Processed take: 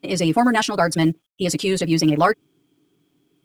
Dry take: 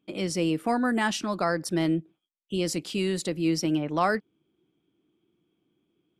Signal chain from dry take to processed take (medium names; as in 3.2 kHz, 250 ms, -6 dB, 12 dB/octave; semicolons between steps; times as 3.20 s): comb 7.2 ms, depth 66%; tempo 1.8×; companded quantiser 8-bit; trim +7.5 dB